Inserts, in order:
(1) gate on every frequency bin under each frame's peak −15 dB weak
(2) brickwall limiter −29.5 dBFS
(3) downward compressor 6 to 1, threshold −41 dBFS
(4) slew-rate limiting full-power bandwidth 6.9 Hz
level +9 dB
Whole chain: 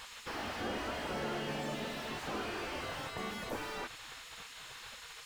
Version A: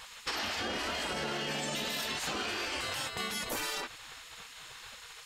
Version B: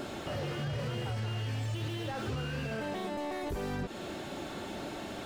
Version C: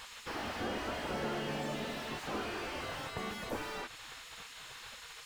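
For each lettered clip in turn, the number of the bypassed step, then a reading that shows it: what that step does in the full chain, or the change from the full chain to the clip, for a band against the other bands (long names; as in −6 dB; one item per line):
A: 4, 8 kHz band +9.0 dB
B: 1, 125 Hz band +14.0 dB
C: 2, average gain reduction 3.0 dB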